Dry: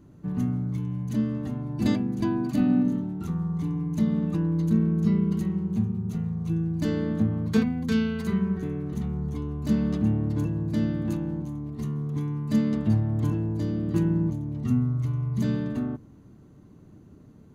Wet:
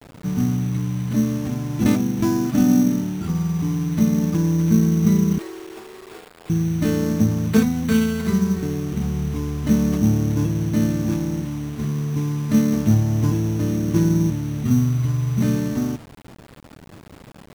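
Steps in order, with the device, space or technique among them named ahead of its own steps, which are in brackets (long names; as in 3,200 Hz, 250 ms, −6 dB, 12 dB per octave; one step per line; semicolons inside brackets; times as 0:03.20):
0:05.38–0:06.50: Butterworth high-pass 300 Hz 72 dB per octave
early 8-bit sampler (sample-rate reduction 6,000 Hz, jitter 0%; bit reduction 8 bits)
level +6 dB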